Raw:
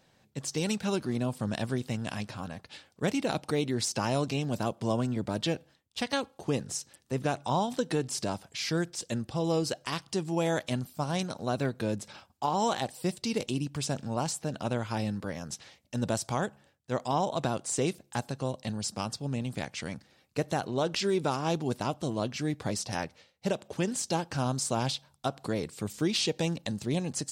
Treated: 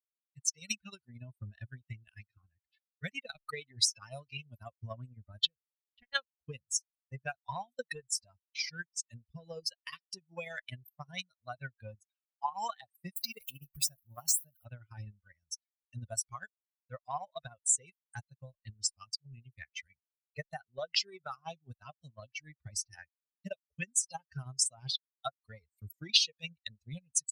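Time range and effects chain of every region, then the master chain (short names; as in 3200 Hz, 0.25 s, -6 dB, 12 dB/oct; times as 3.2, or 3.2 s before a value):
5.47–6.15 LPF 1300 Hz 6 dB/oct + compressor, threshold -31 dBFS
13.16–14.65 switching spikes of -33 dBFS + mismatched tape noise reduction decoder only
whole clip: per-bin expansion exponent 3; passive tone stack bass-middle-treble 10-0-10; transient shaper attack +8 dB, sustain -9 dB; gain +6 dB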